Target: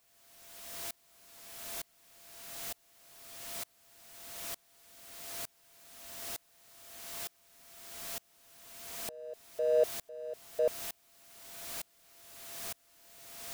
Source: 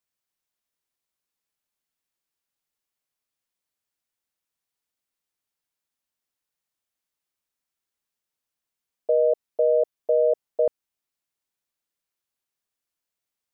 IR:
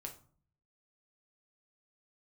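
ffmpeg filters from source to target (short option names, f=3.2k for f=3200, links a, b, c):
-af "aeval=exprs='val(0)+0.5*0.0237*sgn(val(0))':c=same,aeval=exprs='val(0)+0.00316*sin(2*PI*680*n/s)':c=same,aeval=exprs='val(0)*pow(10,-33*if(lt(mod(-1.1*n/s,1),2*abs(-1.1)/1000),1-mod(-1.1*n/s,1)/(2*abs(-1.1)/1000),(mod(-1.1*n/s,1)-2*abs(-1.1)/1000)/(1-2*abs(-1.1)/1000))/20)':c=same,volume=1.5dB"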